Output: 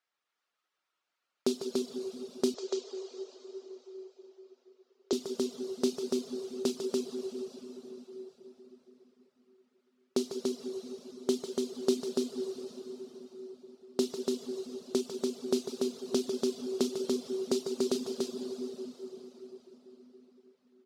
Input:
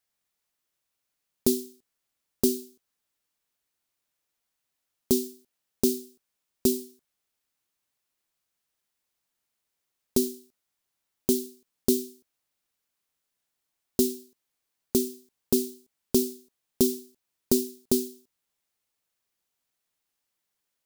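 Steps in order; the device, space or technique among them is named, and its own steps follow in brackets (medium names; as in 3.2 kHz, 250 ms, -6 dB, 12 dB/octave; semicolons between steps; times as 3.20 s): station announcement (band-pass 350–4200 Hz; peaking EQ 1.3 kHz +6.5 dB 0.42 oct; loudspeakers at several distances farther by 51 m -8 dB, 99 m -3 dB; reverberation RT60 4.8 s, pre-delay 4 ms, DRR 2 dB); reverb removal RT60 0.63 s; 2.54–5.13 s: Chebyshev band-pass 360–7100 Hz, order 4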